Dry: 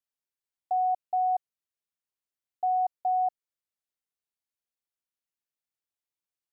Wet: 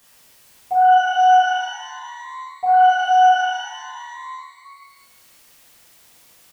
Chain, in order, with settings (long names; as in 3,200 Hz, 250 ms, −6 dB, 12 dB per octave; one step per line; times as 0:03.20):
on a send: echo with shifted repeats 268 ms, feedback 60%, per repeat +74 Hz, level −21 dB
on the sum: upward compression, threshold −36 dBFS
far-end echo of a speakerphone 310 ms, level −19 dB
reverb with rising layers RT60 1.2 s, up +12 semitones, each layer −8 dB, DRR −11.5 dB
level −2.5 dB